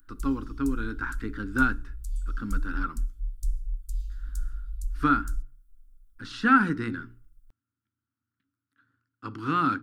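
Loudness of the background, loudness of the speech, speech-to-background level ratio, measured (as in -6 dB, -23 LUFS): -38.0 LUFS, -27.5 LUFS, 10.5 dB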